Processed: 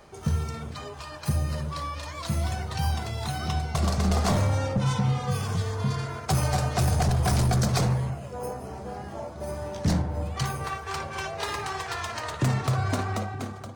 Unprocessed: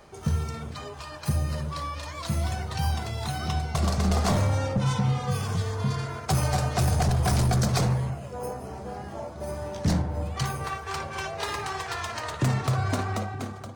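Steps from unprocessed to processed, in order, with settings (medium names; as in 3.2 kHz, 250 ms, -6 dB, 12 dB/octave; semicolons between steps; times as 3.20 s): no audible change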